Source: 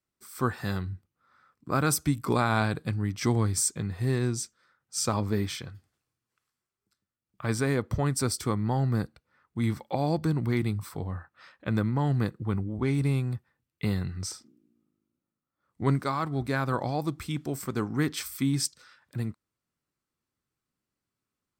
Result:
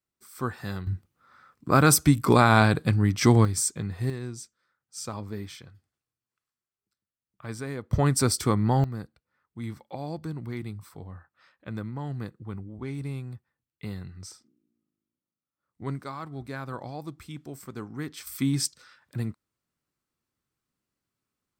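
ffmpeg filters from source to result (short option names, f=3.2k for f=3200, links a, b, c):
-af "asetnsamples=n=441:p=0,asendcmd='0.87 volume volume 7dB;3.45 volume volume 0dB;4.1 volume volume -8dB;7.93 volume volume 4.5dB;8.84 volume volume -8dB;18.27 volume volume 1dB',volume=-3dB"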